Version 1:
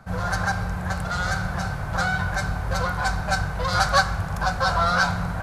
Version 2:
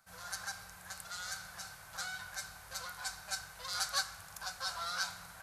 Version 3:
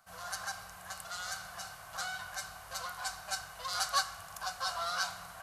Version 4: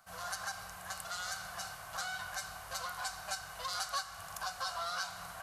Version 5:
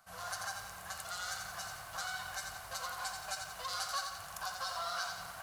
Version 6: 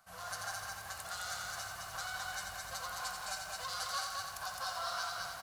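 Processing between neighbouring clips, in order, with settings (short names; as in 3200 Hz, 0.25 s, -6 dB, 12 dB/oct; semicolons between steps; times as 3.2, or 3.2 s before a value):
pre-emphasis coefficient 0.97; gain -4 dB
small resonant body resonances 700/1100/2900 Hz, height 9 dB, ringing for 20 ms; gain +1 dB
compressor 3:1, threshold -38 dBFS, peak gain reduction 10 dB; gain +2 dB
lo-fi delay 87 ms, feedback 55%, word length 9-bit, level -5 dB; gain -1.5 dB
echo 0.213 s -3 dB; gain -1.5 dB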